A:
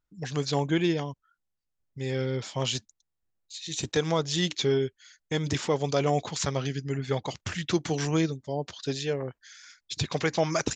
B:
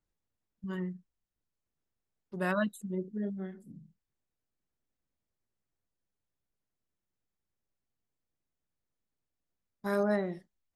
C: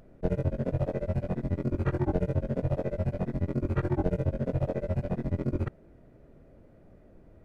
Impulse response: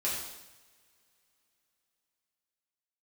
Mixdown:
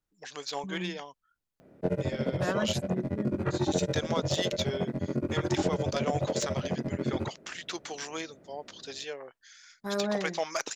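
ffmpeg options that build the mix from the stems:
-filter_complex "[0:a]highpass=600,aeval=exprs='0.188*(cos(1*acos(clip(val(0)/0.188,-1,1)))-cos(1*PI/2))+0.0237*(cos(3*acos(clip(val(0)/0.188,-1,1)))-cos(3*PI/2))':c=same,volume=1[s0];[1:a]volume=0.841[s1];[2:a]highpass=150,adelay=1600,volume=1.19[s2];[s0][s1][s2]amix=inputs=3:normalize=0"

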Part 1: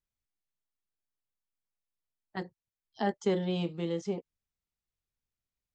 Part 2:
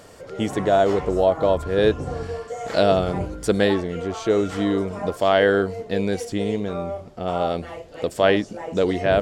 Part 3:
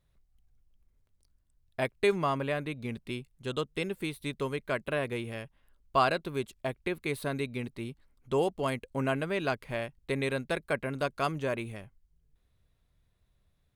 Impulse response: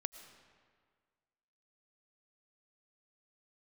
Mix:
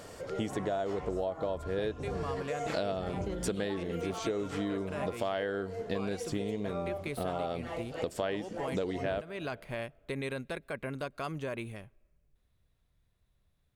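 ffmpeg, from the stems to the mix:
-filter_complex "[0:a]volume=0.596[s0];[1:a]volume=0.708,asplit=2[s1][s2];[s2]volume=0.224[s3];[2:a]alimiter=limit=0.0708:level=0:latency=1,volume=0.75,asplit=2[s4][s5];[s5]volume=0.0708[s6];[3:a]atrim=start_sample=2205[s7];[s3][s6]amix=inputs=2:normalize=0[s8];[s8][s7]afir=irnorm=-1:irlink=0[s9];[s0][s1][s4][s9]amix=inputs=4:normalize=0,acompressor=threshold=0.0282:ratio=6"

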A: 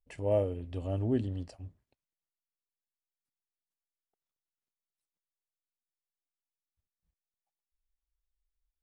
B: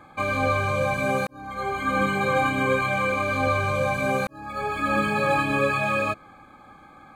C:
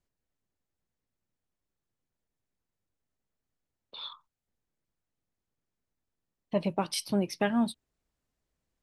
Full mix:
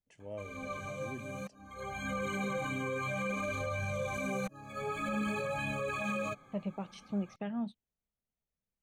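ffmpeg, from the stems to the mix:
-filter_complex "[0:a]highpass=89,volume=0.168,asplit=2[s0][s1];[1:a]bandreject=f=810:w=12,flanger=delay=1.2:depth=6.5:regen=1:speed=0.55:shape=sinusoidal,adelay=200,volume=0.596[s2];[2:a]lowpass=2900,volume=0.299[s3];[s1]apad=whole_len=324497[s4];[s2][s4]sidechaincompress=threshold=0.002:ratio=3:attack=8.3:release=803[s5];[s5][s3]amix=inputs=2:normalize=0,equalizer=f=315:t=o:w=0.33:g=-7,equalizer=f=1000:t=o:w=0.33:g=-4,equalizer=f=1600:t=o:w=0.33:g=-5,equalizer=f=3150:t=o:w=0.33:g=-6,equalizer=f=5000:t=o:w=0.33:g=-10,alimiter=level_in=1.68:limit=0.0631:level=0:latency=1:release=25,volume=0.596,volume=1[s6];[s0][s6]amix=inputs=2:normalize=0,equalizer=f=200:t=o:w=0.33:g=6,equalizer=f=3150:t=o:w=0.33:g=6,equalizer=f=6300:t=o:w=0.33:g=11"

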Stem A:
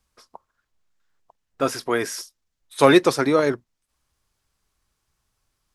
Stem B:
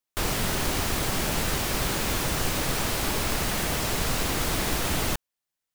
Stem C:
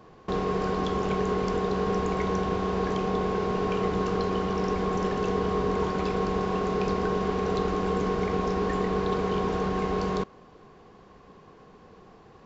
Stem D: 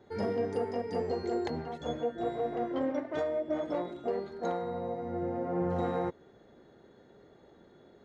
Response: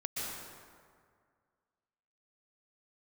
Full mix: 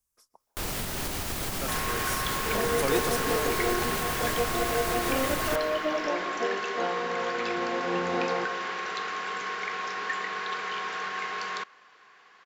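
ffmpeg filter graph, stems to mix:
-filter_complex "[0:a]aexciter=amount=4.1:drive=3.7:freq=5800,volume=0.15,asplit=2[s0][s1];[s1]volume=0.112[s2];[1:a]alimiter=limit=0.075:level=0:latency=1:release=320,adelay=400,volume=0.891,asplit=2[s3][s4];[s4]volume=0.178[s5];[2:a]bandpass=f=1700:t=q:w=1.9:csg=0,crystalizer=i=9:c=0,adelay=1400,volume=1.06[s6];[3:a]highpass=250,adelay=2350,volume=1.19,asplit=2[s7][s8];[s8]volume=0.224[s9];[4:a]atrim=start_sample=2205[s10];[s2][s5][s9]amix=inputs=3:normalize=0[s11];[s11][s10]afir=irnorm=-1:irlink=0[s12];[s0][s3][s6][s7][s12]amix=inputs=5:normalize=0,highshelf=f=10000:g=4.5"

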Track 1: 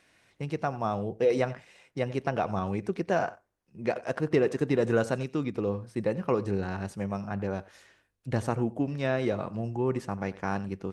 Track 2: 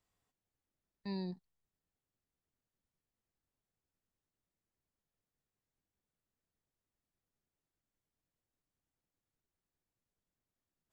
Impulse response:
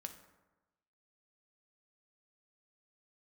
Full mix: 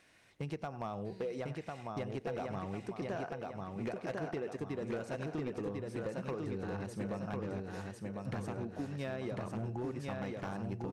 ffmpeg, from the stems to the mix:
-filter_complex "[0:a]acompressor=threshold=0.02:ratio=12,volume=0.841,asplit=2[s0][s1];[s1]volume=0.708[s2];[1:a]volume=0.168[s3];[s2]aecho=0:1:1049|2098|3147|4196|5245|6294:1|0.44|0.194|0.0852|0.0375|0.0165[s4];[s0][s3][s4]amix=inputs=3:normalize=0,volume=37.6,asoftclip=hard,volume=0.0266"

